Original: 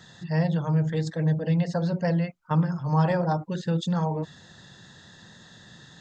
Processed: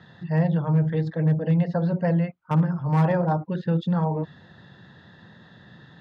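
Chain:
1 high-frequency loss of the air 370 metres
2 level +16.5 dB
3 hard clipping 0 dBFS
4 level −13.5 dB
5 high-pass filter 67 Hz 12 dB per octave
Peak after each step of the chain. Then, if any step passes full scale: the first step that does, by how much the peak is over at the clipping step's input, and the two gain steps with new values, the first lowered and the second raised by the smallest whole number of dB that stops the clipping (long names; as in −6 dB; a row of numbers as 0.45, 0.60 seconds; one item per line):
−11.0, +5.5, 0.0, −13.5, −10.5 dBFS
step 2, 5.5 dB
step 2 +10.5 dB, step 4 −7.5 dB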